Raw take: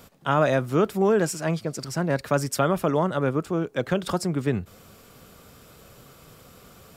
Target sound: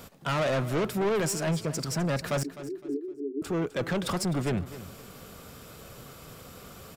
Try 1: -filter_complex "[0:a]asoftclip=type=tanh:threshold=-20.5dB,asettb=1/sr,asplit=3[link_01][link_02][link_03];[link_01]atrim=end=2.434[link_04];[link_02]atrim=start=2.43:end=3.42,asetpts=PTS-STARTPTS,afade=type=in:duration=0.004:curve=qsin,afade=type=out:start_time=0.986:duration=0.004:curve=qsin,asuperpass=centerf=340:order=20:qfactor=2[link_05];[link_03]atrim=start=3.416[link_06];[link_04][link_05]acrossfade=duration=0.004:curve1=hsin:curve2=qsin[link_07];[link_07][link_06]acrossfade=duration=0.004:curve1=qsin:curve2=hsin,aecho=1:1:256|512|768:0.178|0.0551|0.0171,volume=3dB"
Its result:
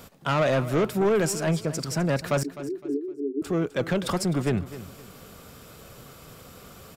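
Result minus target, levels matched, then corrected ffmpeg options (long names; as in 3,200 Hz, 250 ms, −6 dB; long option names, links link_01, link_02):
soft clipping: distortion −4 dB
-filter_complex "[0:a]asoftclip=type=tanh:threshold=-27dB,asettb=1/sr,asplit=3[link_01][link_02][link_03];[link_01]atrim=end=2.434[link_04];[link_02]atrim=start=2.43:end=3.42,asetpts=PTS-STARTPTS,afade=type=in:duration=0.004:curve=qsin,afade=type=out:start_time=0.986:duration=0.004:curve=qsin,asuperpass=centerf=340:order=20:qfactor=2[link_05];[link_03]atrim=start=3.416[link_06];[link_04][link_05]acrossfade=duration=0.004:curve1=hsin:curve2=qsin[link_07];[link_07][link_06]acrossfade=duration=0.004:curve1=qsin:curve2=hsin,aecho=1:1:256|512|768:0.178|0.0551|0.0171,volume=3dB"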